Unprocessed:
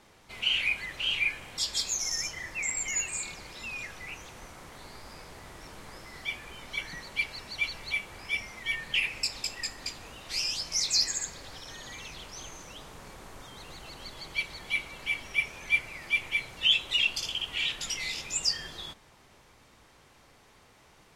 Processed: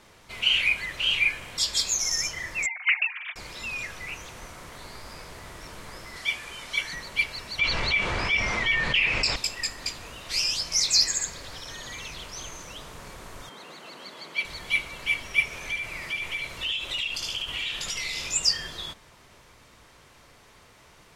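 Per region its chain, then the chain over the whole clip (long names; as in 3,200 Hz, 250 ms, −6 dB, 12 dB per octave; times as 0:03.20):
0:02.66–0:03.36: three sine waves on the formant tracks + downward expander −40 dBFS + comb filter 6.5 ms, depth 48%
0:06.16–0:06.95: low-pass filter 11,000 Hz + spectral tilt +1.5 dB per octave
0:07.59–0:09.36: high-frequency loss of the air 110 metres + envelope flattener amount 70%
0:13.49–0:14.45: high-pass filter 190 Hz 24 dB per octave + high-shelf EQ 3,700 Hz −8 dB
0:15.44–0:18.31: downward compressor 4 to 1, threshold −34 dBFS + single-tap delay 74 ms −3.5 dB
whole clip: parametric band 270 Hz −2.5 dB 1.4 octaves; notch filter 800 Hz, Q 12; level +5 dB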